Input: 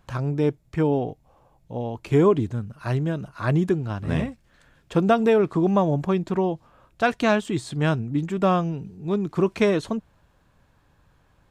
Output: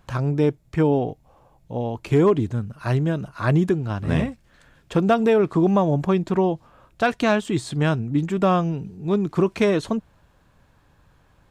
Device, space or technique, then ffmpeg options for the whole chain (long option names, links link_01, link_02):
clipper into limiter: -af "asoftclip=type=hard:threshold=-10.5dB,alimiter=limit=-13dB:level=0:latency=1:release=262,volume=3dB"